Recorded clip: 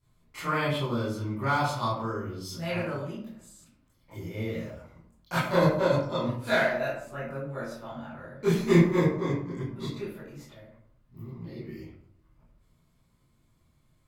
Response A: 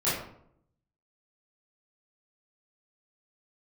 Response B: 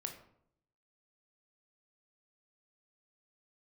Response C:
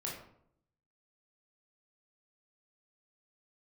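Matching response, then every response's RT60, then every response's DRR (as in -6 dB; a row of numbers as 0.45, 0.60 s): A; 0.70, 0.70, 0.70 s; -12.0, 4.0, -3.5 dB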